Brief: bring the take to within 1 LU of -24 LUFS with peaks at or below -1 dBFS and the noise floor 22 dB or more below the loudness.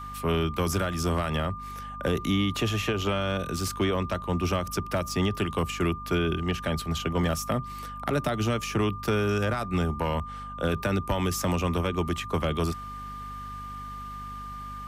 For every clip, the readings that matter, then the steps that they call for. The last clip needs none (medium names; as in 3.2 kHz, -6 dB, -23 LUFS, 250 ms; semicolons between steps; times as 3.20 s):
hum 50 Hz; highest harmonic 250 Hz; hum level -41 dBFS; steady tone 1.2 kHz; tone level -37 dBFS; loudness -28.5 LUFS; peak level -16.0 dBFS; loudness target -24.0 LUFS
-> de-hum 50 Hz, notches 5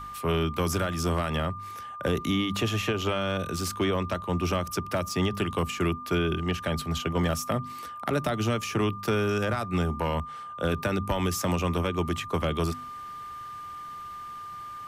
hum not found; steady tone 1.2 kHz; tone level -37 dBFS
-> band-stop 1.2 kHz, Q 30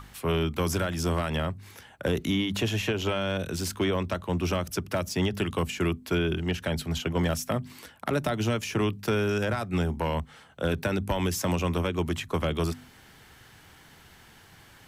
steady tone not found; loudness -28.5 LUFS; peak level -16.0 dBFS; loudness target -24.0 LUFS
-> trim +4.5 dB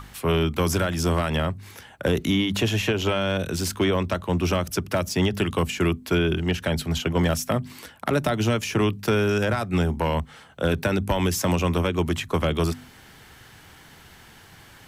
loudness -24.0 LUFS; peak level -11.5 dBFS; noise floor -49 dBFS